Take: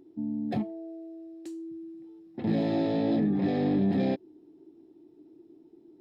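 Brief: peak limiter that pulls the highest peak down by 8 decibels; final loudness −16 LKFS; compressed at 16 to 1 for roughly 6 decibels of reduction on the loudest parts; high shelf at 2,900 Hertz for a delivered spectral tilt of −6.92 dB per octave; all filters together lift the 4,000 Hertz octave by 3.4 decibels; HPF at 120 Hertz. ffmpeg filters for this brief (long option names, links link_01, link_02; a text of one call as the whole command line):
ffmpeg -i in.wav -af "highpass=120,highshelf=frequency=2900:gain=-6.5,equalizer=frequency=4000:width_type=o:gain=8.5,acompressor=threshold=-28dB:ratio=16,volume=22.5dB,alimiter=limit=-6dB:level=0:latency=1" out.wav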